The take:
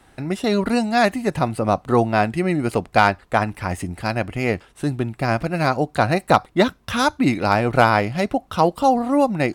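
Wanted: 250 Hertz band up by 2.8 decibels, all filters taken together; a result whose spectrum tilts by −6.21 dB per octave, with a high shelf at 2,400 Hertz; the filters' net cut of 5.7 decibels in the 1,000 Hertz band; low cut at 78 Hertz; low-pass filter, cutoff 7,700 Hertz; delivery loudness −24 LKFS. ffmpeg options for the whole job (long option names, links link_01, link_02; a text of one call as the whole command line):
ffmpeg -i in.wav -af "highpass=78,lowpass=7700,equalizer=frequency=250:width_type=o:gain=4,equalizer=frequency=1000:width_type=o:gain=-8,highshelf=frequency=2400:gain=-4.5,volume=-3dB" out.wav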